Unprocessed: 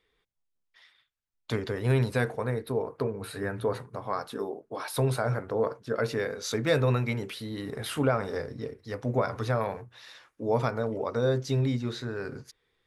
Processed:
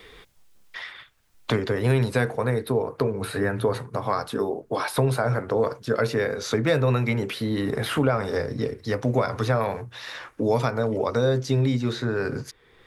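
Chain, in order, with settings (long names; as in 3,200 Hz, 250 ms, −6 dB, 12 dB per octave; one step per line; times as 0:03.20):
pitch vibrato 1.8 Hz 18 cents
multiband upward and downward compressor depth 70%
level +5 dB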